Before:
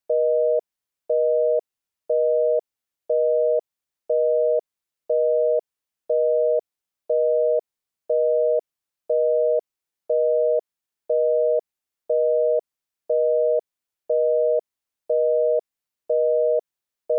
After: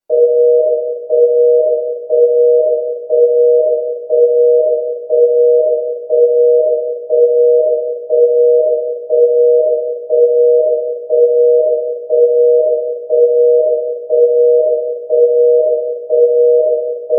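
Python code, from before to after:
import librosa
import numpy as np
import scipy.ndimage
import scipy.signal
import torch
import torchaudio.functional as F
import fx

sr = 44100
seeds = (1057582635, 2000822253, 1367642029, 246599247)

y = fx.peak_eq(x, sr, hz=410.0, db=11.5, octaves=1.4)
y = fx.room_shoebox(y, sr, seeds[0], volume_m3=750.0, walls='mixed', distance_m=7.4)
y = y * 10.0 ** (-8.5 / 20.0)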